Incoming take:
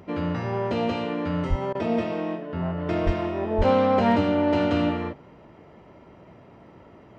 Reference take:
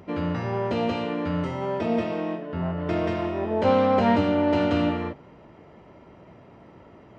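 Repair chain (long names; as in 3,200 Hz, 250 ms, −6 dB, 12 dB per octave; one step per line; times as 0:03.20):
clipped peaks rebuilt −11 dBFS
high-pass at the plosives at 0:01.49/0:03.05/0:03.57
repair the gap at 0:01.73, 19 ms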